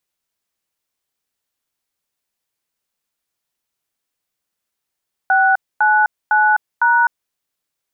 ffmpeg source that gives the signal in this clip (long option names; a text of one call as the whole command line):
ffmpeg -f lavfi -i "aevalsrc='0.224*clip(min(mod(t,0.505),0.255-mod(t,0.505))/0.002,0,1)*(eq(floor(t/0.505),0)*(sin(2*PI*770*mod(t,0.505))+sin(2*PI*1477*mod(t,0.505)))+eq(floor(t/0.505),1)*(sin(2*PI*852*mod(t,0.505))+sin(2*PI*1477*mod(t,0.505)))+eq(floor(t/0.505),2)*(sin(2*PI*852*mod(t,0.505))+sin(2*PI*1477*mod(t,0.505)))+eq(floor(t/0.505),3)*(sin(2*PI*941*mod(t,0.505))+sin(2*PI*1477*mod(t,0.505))))':duration=2.02:sample_rate=44100" out.wav